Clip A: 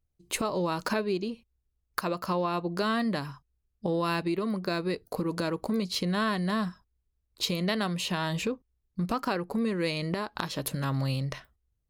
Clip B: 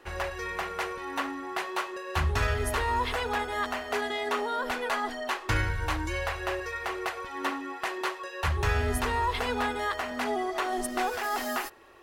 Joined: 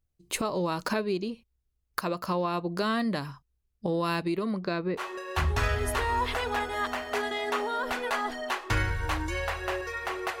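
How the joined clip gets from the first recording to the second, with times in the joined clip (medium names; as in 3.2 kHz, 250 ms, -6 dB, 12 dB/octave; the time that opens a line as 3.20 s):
clip A
4.45–5.04 s: low-pass 10 kHz -> 1.2 kHz
5.00 s: go over to clip B from 1.79 s, crossfade 0.08 s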